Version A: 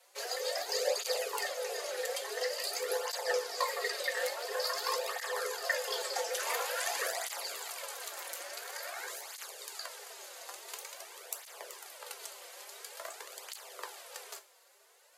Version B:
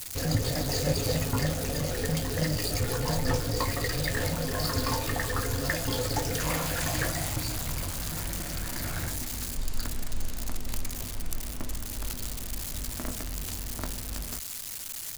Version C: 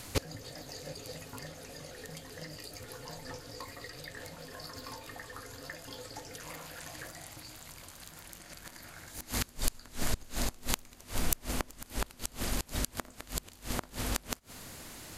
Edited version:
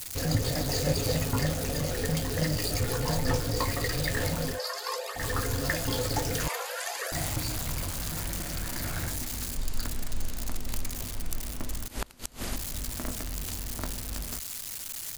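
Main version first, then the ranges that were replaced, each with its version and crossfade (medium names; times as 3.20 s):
B
4.55–5.19 s: from A, crossfade 0.10 s
6.48–7.12 s: from A
11.88–12.56 s: from C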